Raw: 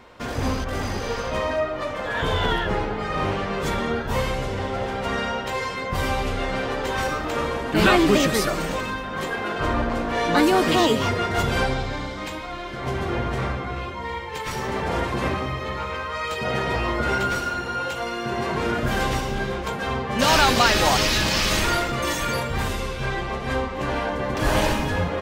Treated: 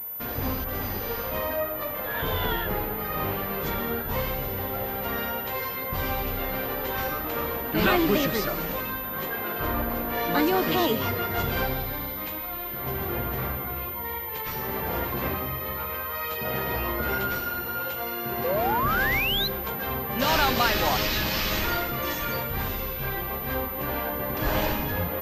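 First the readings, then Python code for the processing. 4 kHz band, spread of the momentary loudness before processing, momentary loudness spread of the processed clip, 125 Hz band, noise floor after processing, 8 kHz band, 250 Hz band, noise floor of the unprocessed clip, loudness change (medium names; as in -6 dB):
-4.5 dB, 10 LU, 7 LU, -5.0 dB, -33 dBFS, -10.0 dB, -5.0 dB, -31 dBFS, -3.5 dB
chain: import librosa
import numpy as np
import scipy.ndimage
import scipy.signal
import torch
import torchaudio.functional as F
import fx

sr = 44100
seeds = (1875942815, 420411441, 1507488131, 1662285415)

y = fx.spec_paint(x, sr, seeds[0], shape='rise', start_s=18.44, length_s=1.04, low_hz=480.0, high_hz=4200.0, level_db=-21.0)
y = fx.pwm(y, sr, carrier_hz=14000.0)
y = y * 10.0 ** (-5.0 / 20.0)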